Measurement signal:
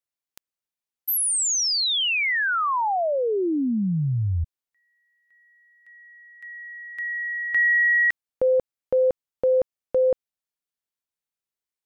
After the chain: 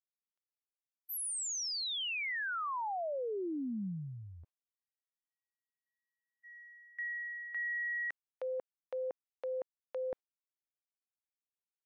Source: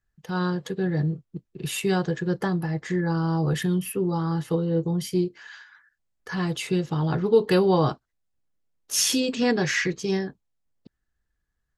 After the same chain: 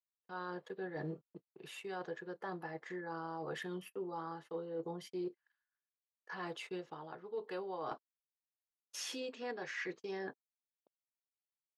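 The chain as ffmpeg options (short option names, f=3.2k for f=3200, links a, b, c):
-af "lowpass=f=1.3k:p=1,agate=range=-44dB:threshold=-43dB:ratio=16:release=117:detection=peak,highpass=550,areverse,acompressor=threshold=-39dB:ratio=20:attack=1.7:release=820:knee=1:detection=rms,areverse,volume=4.5dB"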